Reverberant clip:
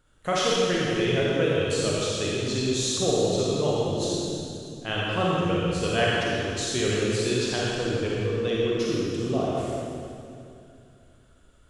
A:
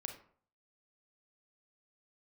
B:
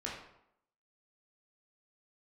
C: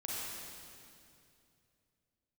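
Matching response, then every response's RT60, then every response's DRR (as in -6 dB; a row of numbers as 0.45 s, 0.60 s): C; 0.50 s, 0.75 s, 2.6 s; 4.0 dB, -4.5 dB, -6.0 dB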